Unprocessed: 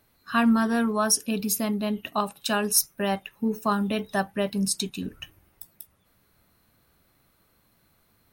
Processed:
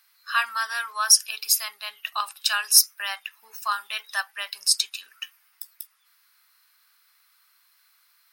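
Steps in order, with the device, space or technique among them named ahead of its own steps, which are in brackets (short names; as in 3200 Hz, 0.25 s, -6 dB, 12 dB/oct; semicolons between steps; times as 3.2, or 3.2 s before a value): headphones lying on a table (HPF 1200 Hz 24 dB/oct; bell 5000 Hz +8.5 dB 0.26 oct); gain +5 dB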